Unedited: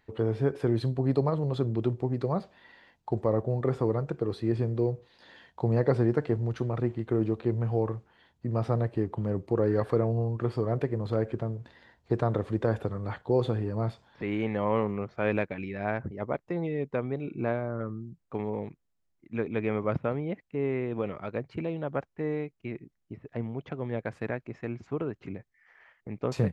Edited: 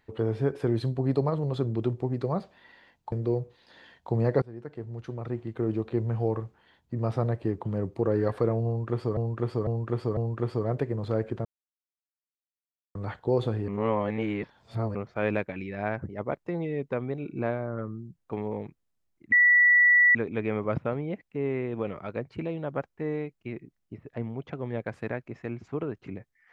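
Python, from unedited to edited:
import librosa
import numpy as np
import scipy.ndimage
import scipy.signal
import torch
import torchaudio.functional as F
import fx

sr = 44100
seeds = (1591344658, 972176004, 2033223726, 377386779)

y = fx.edit(x, sr, fx.cut(start_s=3.12, length_s=1.52),
    fx.fade_in_from(start_s=5.94, length_s=1.53, floor_db=-24.0),
    fx.repeat(start_s=10.19, length_s=0.5, count=4),
    fx.silence(start_s=11.47, length_s=1.5),
    fx.reverse_span(start_s=13.7, length_s=1.27),
    fx.insert_tone(at_s=19.34, length_s=0.83, hz=1950.0, db=-15.5), tone=tone)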